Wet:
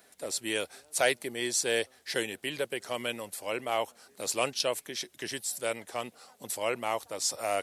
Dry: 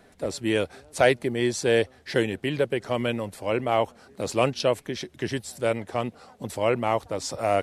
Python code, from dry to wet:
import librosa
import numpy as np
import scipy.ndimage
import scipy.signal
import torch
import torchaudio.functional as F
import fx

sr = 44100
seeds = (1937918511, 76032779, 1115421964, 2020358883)

y = fx.riaa(x, sr, side='recording')
y = F.gain(torch.from_numpy(y), -6.0).numpy()